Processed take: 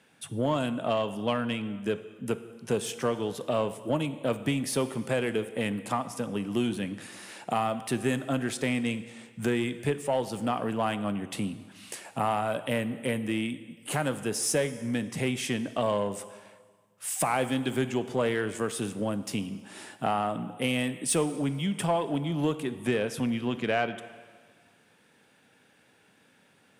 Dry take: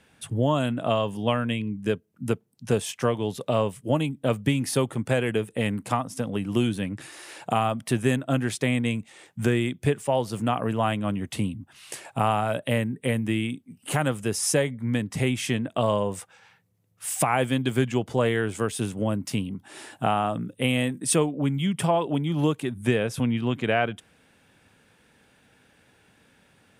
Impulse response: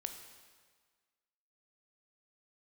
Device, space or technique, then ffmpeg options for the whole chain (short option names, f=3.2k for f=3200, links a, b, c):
saturated reverb return: -filter_complex "[0:a]highpass=150,asplit=2[a][b];[1:a]atrim=start_sample=2205[c];[b][c]afir=irnorm=-1:irlink=0,asoftclip=type=tanh:threshold=-22.5dB,volume=1.5dB[d];[a][d]amix=inputs=2:normalize=0,volume=-7.5dB"